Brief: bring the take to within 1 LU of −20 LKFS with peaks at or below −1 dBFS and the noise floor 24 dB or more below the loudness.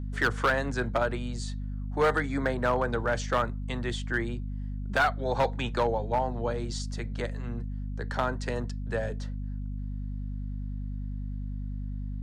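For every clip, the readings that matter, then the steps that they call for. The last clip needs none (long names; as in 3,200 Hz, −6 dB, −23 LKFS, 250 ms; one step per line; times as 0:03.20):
share of clipped samples 0.6%; peaks flattened at −18.5 dBFS; mains hum 50 Hz; hum harmonics up to 250 Hz; level of the hum −32 dBFS; integrated loudness −31.0 LKFS; sample peak −18.5 dBFS; target loudness −20.0 LKFS
→ clipped peaks rebuilt −18.5 dBFS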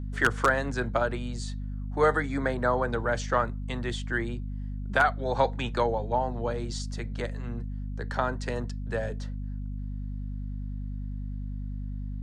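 share of clipped samples 0.0%; mains hum 50 Hz; hum harmonics up to 250 Hz; level of the hum −31 dBFS
→ hum removal 50 Hz, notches 5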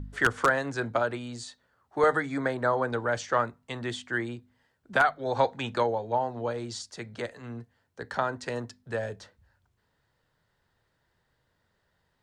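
mains hum none found; integrated loudness −29.5 LKFS; sample peak −9.0 dBFS; target loudness −20.0 LKFS
→ level +9.5 dB
brickwall limiter −1 dBFS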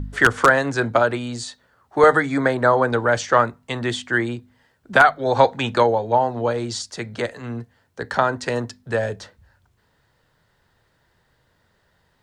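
integrated loudness −20.0 LKFS; sample peak −1.0 dBFS; background noise floor −65 dBFS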